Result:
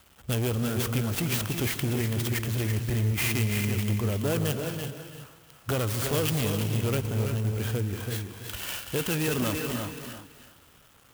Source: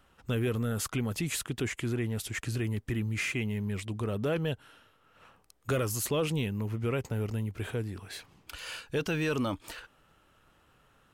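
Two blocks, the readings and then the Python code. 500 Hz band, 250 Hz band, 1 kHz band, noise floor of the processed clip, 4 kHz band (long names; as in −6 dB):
+2.0 dB, +3.0 dB, +4.0 dB, −57 dBFS, +6.0 dB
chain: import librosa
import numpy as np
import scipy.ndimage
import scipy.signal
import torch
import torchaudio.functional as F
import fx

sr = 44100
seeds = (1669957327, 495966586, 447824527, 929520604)

y = fx.peak_eq(x, sr, hz=66.0, db=7.5, octaves=1.7)
y = fx.rev_gated(y, sr, seeds[0], gate_ms=410, shape='rising', drr_db=8.0)
y = np.clip(y, -10.0 ** (-26.0 / 20.0), 10.0 ** (-26.0 / 20.0))
y = fx.highpass(y, sr, hz=52.0, slope=6)
y = fx.echo_feedback(y, sr, ms=332, feedback_pct=17, wet_db=-7)
y = fx.quant_dither(y, sr, seeds[1], bits=10, dither='none')
y = fx.peak_eq(y, sr, hz=3200.0, db=9.0, octaves=0.46)
y = fx.clock_jitter(y, sr, seeds[2], jitter_ms=0.058)
y = y * librosa.db_to_amplitude(2.5)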